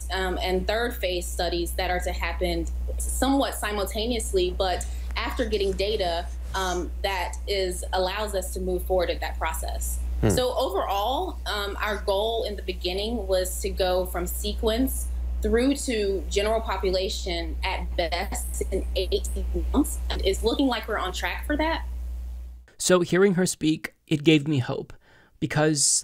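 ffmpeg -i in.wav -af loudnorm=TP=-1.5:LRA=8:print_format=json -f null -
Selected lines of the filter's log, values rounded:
"input_i" : "-25.6",
"input_tp" : "-6.1",
"input_lra" : "4.1",
"input_thresh" : "-35.8",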